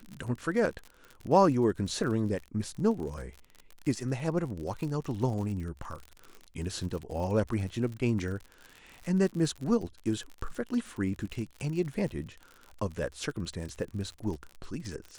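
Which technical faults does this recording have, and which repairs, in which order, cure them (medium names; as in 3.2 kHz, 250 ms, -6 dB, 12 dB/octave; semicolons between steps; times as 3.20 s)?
crackle 56 per s -37 dBFS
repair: de-click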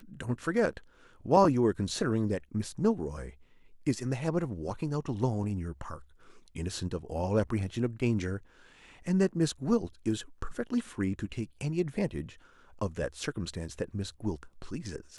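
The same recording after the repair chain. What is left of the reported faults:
nothing left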